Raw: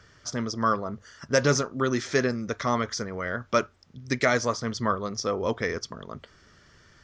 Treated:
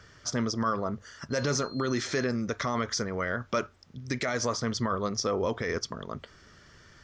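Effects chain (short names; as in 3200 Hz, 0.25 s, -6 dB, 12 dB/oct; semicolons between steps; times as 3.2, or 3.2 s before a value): limiter -20 dBFS, peak gain reduction 11.5 dB; 1.3–2.23 whine 4200 Hz -47 dBFS; gain +1.5 dB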